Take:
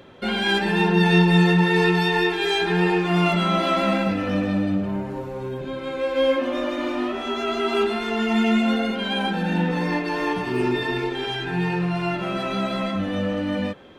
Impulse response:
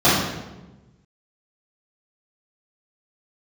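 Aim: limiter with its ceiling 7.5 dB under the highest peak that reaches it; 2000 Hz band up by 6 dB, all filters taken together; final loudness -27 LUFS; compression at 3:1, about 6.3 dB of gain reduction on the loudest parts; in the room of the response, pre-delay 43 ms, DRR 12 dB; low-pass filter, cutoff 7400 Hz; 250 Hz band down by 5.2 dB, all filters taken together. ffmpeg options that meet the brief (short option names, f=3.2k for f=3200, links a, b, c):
-filter_complex "[0:a]lowpass=7.4k,equalizer=f=250:t=o:g=-8.5,equalizer=f=2k:t=o:g=7.5,acompressor=threshold=-22dB:ratio=3,alimiter=limit=-20dB:level=0:latency=1,asplit=2[a][b];[1:a]atrim=start_sample=2205,adelay=43[c];[b][c]afir=irnorm=-1:irlink=0,volume=-36.5dB[d];[a][d]amix=inputs=2:normalize=0"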